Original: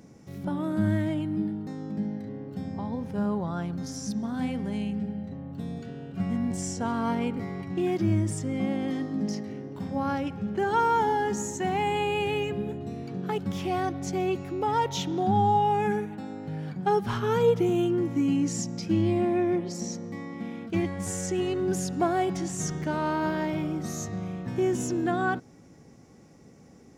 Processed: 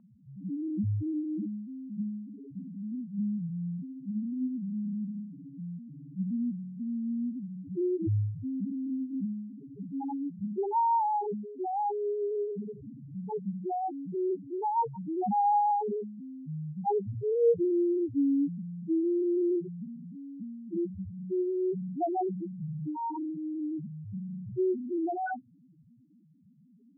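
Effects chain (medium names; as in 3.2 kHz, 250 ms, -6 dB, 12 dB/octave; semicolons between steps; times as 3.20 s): loudest bins only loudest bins 1; Chebyshev low-pass 1.1 kHz; trim +3.5 dB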